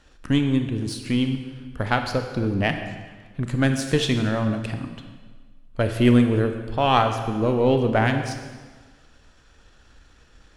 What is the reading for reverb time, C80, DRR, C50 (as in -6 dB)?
1.5 s, 8.5 dB, 6.0 dB, 7.0 dB